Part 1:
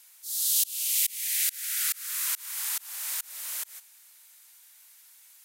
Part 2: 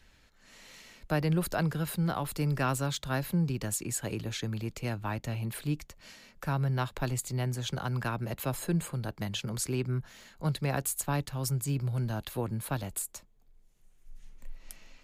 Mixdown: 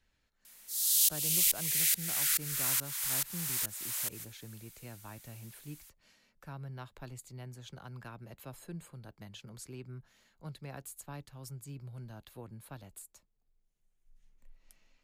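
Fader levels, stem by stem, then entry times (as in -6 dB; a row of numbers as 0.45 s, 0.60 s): -1.5 dB, -14.5 dB; 0.45 s, 0.00 s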